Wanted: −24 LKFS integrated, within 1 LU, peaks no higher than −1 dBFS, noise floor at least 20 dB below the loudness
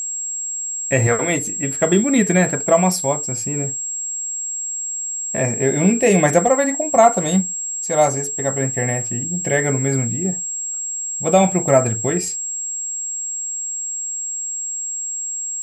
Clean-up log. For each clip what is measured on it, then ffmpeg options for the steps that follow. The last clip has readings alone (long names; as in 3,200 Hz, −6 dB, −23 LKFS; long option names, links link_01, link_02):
interfering tone 7,600 Hz; level of the tone −23 dBFS; integrated loudness −19.0 LKFS; sample peak −1.5 dBFS; target loudness −24.0 LKFS
→ -af "bandreject=frequency=7600:width=30"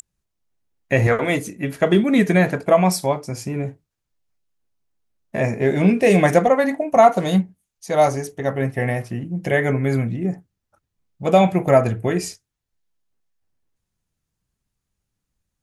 interfering tone none found; integrated loudness −19.0 LKFS; sample peak −2.0 dBFS; target loudness −24.0 LKFS
→ -af "volume=-5dB"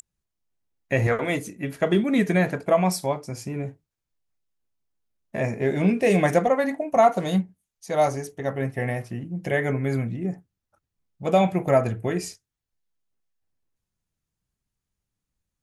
integrated loudness −24.0 LKFS; sample peak −7.0 dBFS; background noise floor −85 dBFS